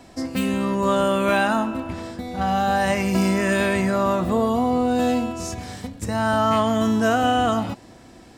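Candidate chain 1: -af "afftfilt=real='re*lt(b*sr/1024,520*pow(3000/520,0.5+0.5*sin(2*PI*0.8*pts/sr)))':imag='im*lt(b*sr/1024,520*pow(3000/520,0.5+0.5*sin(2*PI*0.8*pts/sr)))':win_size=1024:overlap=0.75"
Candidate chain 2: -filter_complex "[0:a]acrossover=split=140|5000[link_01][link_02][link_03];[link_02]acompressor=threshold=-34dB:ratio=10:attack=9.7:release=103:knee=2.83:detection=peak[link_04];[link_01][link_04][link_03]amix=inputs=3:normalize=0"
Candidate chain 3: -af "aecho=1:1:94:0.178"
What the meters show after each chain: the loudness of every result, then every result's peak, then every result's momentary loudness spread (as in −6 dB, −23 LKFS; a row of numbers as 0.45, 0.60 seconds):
−22.0, −32.5, −21.5 LKFS; −8.5, −17.0, −8.0 dBFS; 13, 5, 12 LU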